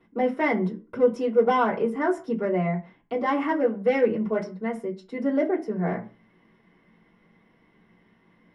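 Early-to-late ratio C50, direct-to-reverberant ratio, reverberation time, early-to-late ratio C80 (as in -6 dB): 14.5 dB, -5.5 dB, 0.40 s, 19.0 dB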